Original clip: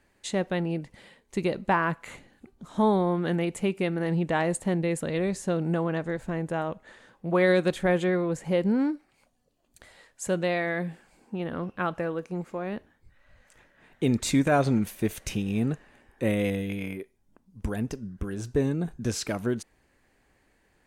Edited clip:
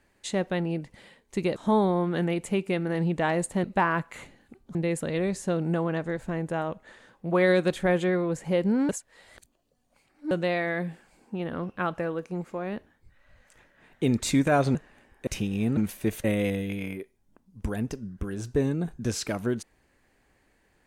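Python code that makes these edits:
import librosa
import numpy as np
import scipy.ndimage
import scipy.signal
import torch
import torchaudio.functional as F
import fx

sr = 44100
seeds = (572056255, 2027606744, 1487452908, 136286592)

y = fx.edit(x, sr, fx.move(start_s=1.56, length_s=1.11, to_s=4.75),
    fx.reverse_span(start_s=8.89, length_s=1.42),
    fx.swap(start_s=14.75, length_s=0.47, other_s=15.72, other_length_s=0.52), tone=tone)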